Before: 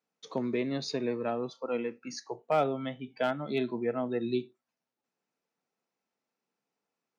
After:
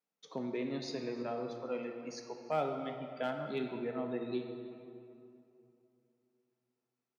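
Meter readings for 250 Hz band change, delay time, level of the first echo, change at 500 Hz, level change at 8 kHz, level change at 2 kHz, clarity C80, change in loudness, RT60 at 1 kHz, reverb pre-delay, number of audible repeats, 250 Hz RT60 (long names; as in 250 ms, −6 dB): −6.0 dB, 319 ms, −20.5 dB, −6.0 dB, can't be measured, −6.5 dB, 6.5 dB, −6.0 dB, 2.7 s, 8 ms, 1, 3.2 s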